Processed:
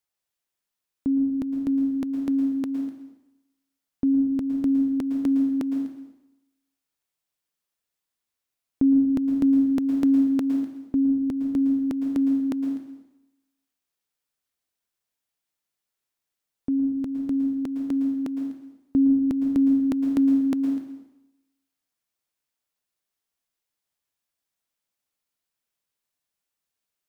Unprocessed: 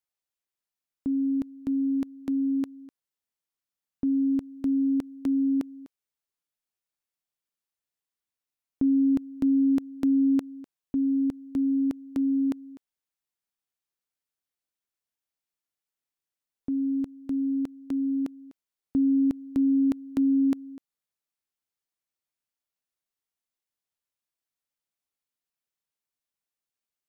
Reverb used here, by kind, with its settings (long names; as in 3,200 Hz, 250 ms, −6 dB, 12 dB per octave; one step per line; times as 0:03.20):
dense smooth reverb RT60 0.91 s, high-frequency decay 0.95×, pre-delay 100 ms, DRR 4.5 dB
level +4 dB